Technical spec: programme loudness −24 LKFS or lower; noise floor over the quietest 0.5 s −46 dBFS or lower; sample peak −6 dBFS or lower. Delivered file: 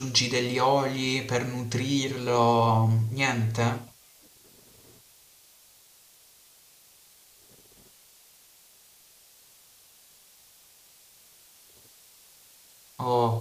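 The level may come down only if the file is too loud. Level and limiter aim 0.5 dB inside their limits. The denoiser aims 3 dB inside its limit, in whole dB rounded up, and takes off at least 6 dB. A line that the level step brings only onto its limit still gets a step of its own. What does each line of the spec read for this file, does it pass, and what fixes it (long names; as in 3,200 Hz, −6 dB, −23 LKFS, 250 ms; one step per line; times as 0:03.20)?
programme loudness −25.5 LKFS: in spec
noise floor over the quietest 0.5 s −57 dBFS: in spec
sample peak −8.5 dBFS: in spec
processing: no processing needed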